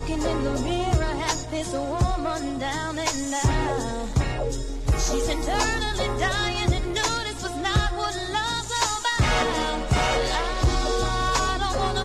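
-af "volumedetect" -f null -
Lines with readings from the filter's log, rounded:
mean_volume: -24.2 dB
max_volume: -11.7 dB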